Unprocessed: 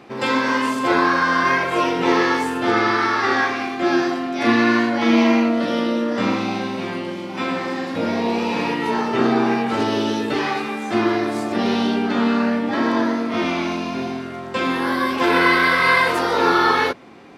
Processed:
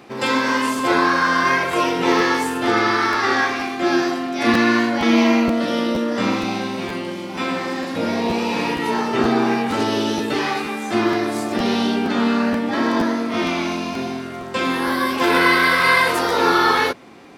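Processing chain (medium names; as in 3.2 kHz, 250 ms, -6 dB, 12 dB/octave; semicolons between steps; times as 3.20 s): treble shelf 6.5 kHz +9.5 dB; crackling interface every 0.47 s, samples 512, repeat, from 0.77 s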